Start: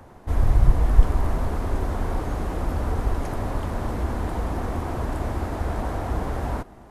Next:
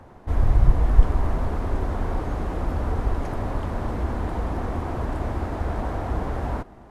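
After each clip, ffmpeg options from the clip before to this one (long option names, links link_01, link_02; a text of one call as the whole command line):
ffmpeg -i in.wav -af "lowpass=frequency=3900:poles=1" out.wav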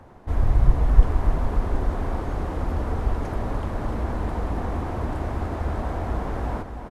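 ffmpeg -i in.wav -af "aecho=1:1:295|590|885|1180|1475|1770|2065:0.335|0.198|0.117|0.0688|0.0406|0.0239|0.0141,volume=-1dB" out.wav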